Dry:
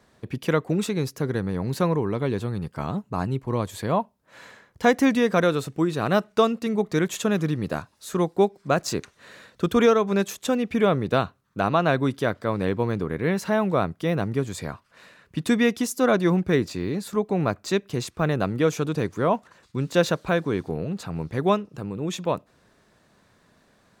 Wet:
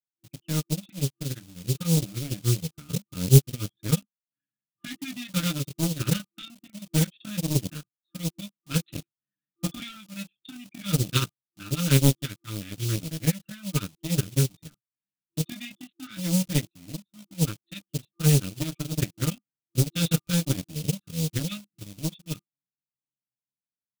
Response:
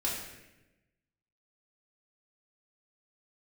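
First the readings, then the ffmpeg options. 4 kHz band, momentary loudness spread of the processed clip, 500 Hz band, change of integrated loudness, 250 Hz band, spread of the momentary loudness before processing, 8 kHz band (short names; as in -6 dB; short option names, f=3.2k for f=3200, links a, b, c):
+1.5 dB, 18 LU, -13.5 dB, -3.0 dB, -5.5 dB, 10 LU, +5.5 dB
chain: -filter_complex "[0:a]flanger=delay=18.5:depth=6.7:speed=0.23,anlmdn=25.1,equalizer=f=130:t=o:w=1.6:g=9,aecho=1:1:6.6:0.72,dynaudnorm=f=240:g=17:m=9.5dB,aresample=8000,volume=5.5dB,asoftclip=hard,volume=-5.5dB,aresample=44100,afftfilt=real='re*(1-between(b*sr/4096,340,1200))':imag='im*(1-between(b*sr/4096,340,1200))':win_size=4096:overlap=0.75,acrossover=split=160[a][b];[a]acrusher=bits=6:mix=0:aa=0.000001[c];[b]asoftclip=type=tanh:threshold=-18.5dB[d];[c][d]amix=inputs=2:normalize=0,aeval=exprs='0.501*(cos(1*acos(clip(val(0)/0.501,-1,1)))-cos(1*PI/2))+0.158*(cos(3*acos(clip(val(0)/0.501,-1,1)))-cos(3*PI/2))':c=same,aexciter=amount=6.2:drive=4.3:freq=2.5k,volume=1dB"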